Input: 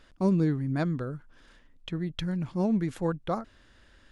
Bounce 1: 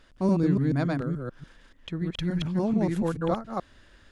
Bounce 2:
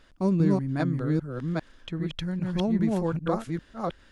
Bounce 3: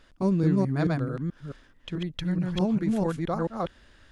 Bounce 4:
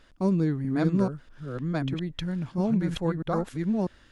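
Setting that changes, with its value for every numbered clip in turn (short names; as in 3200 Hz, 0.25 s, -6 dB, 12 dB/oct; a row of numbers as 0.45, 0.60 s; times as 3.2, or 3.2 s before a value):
reverse delay, time: 0.144, 0.399, 0.217, 0.645 s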